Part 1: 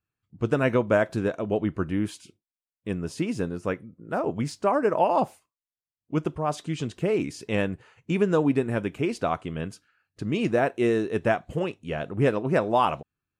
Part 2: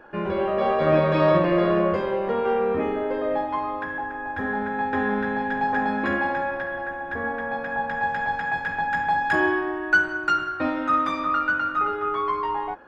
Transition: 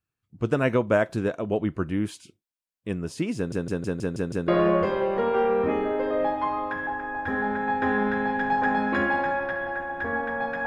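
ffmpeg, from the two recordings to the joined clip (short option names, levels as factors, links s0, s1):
-filter_complex "[0:a]apad=whole_dur=10.66,atrim=end=10.66,asplit=7[s0][s1][s2][s3][s4][s5][s6];[s0]atrim=end=3.522[s7];[s1]atrim=start=3.358:end=3.522[s8];[s2]atrim=start=3.358:end=3.522[s9];[s3]atrim=start=3.358:end=3.522[s10];[s4]atrim=start=3.358:end=3.522[s11];[s5]atrim=start=3.358:end=3.522[s12];[s6]atrim=start=3.358:end=3.522[s13];[1:a]atrim=start=1.588:end=7.77[s14];[s7][s8]acrossfade=d=0.004:c1=hsin:c2=hsin[s15];[s15][s9]acrossfade=d=0.004:c1=hsin:c2=hsin[s16];[s16][s10]acrossfade=d=0.004:c1=hsin:c2=hsin[s17];[s17][s11]acrossfade=d=0.004:c1=hsin:c2=hsin[s18];[s18][s12]acrossfade=d=0.004:c1=hsin:c2=hsin[s19];[s19][s13]acrossfade=d=0.004:c1=hsin:c2=hsin[s20];[s20][s14]acrossfade=d=0.004:c1=hsin:c2=hsin"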